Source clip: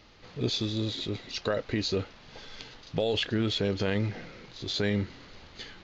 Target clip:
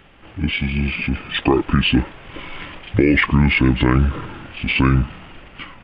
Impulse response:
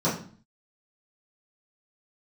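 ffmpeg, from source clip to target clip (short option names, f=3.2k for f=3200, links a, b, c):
-af "dynaudnorm=f=270:g=7:m=5.5dB,asetrate=28595,aresample=44100,atempo=1.54221,asuperstop=centerf=4100:order=4:qfactor=5.2,volume=8dB"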